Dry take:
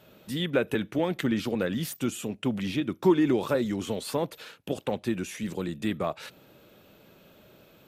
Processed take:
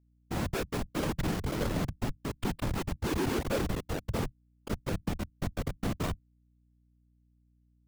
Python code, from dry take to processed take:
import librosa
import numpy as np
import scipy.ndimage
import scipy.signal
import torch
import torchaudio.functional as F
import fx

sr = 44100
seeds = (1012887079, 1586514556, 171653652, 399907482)

y = fx.schmitt(x, sr, flips_db=-26.0)
y = fx.whisperise(y, sr, seeds[0])
y = fx.add_hum(y, sr, base_hz=60, snr_db=33)